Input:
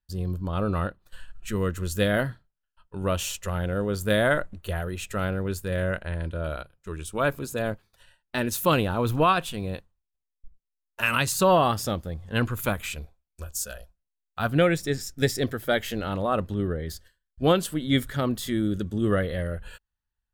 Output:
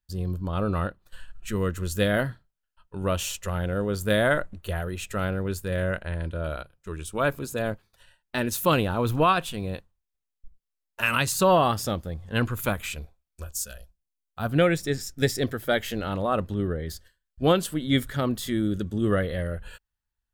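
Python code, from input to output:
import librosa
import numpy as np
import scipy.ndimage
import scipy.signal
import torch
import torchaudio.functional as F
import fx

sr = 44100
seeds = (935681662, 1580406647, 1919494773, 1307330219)

y = fx.peak_eq(x, sr, hz=fx.line((13.52, 590.0), (14.49, 2500.0)), db=-7.5, octaves=2.6, at=(13.52, 14.49), fade=0.02)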